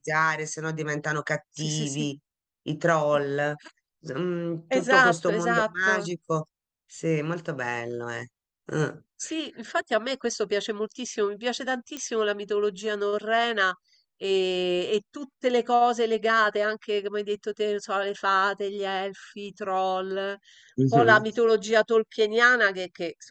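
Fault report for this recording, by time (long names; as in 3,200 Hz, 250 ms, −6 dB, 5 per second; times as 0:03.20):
0:11.97: click −18 dBFS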